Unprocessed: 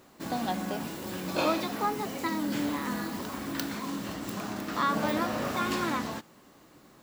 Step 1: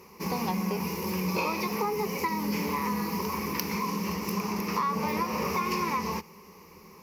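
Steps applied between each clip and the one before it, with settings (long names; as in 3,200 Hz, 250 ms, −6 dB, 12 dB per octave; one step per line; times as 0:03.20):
EQ curve with evenly spaced ripples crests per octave 0.82, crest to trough 17 dB
downward compressor, threshold −28 dBFS, peak gain reduction 9 dB
level +2.5 dB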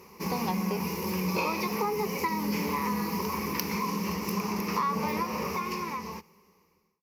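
fade-out on the ending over 2.08 s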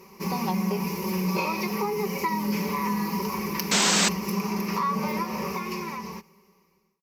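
comb filter 5.2 ms, depth 59%
sound drawn into the spectrogram noise, 0:03.71–0:04.09, 220–8,300 Hz −22 dBFS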